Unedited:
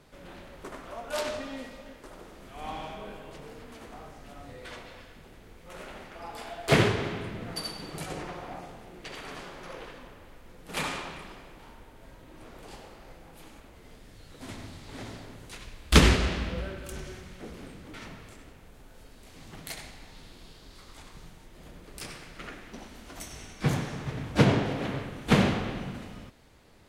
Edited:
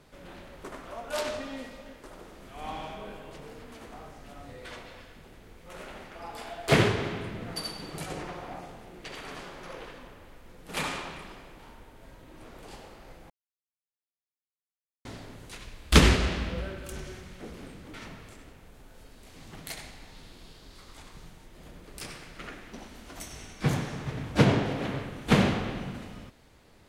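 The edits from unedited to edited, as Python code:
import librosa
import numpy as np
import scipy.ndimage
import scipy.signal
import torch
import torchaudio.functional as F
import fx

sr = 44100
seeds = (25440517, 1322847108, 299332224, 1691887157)

y = fx.edit(x, sr, fx.silence(start_s=13.3, length_s=1.75), tone=tone)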